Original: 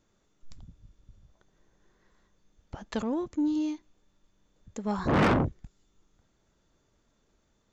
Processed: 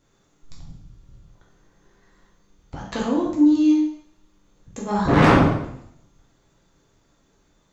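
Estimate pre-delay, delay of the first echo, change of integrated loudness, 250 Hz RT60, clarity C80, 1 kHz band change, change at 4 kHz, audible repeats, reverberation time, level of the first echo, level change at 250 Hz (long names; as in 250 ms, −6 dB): 4 ms, no echo audible, +9.5 dB, 0.75 s, 7.5 dB, +9.5 dB, +8.5 dB, no echo audible, 0.75 s, no echo audible, +11.0 dB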